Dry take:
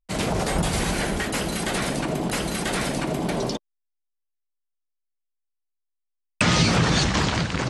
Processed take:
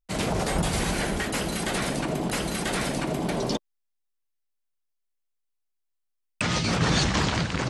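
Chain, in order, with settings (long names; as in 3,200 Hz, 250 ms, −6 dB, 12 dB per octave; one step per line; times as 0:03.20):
0:03.50–0:06.81: compressor whose output falls as the input rises −23 dBFS, ratio −1
level −2 dB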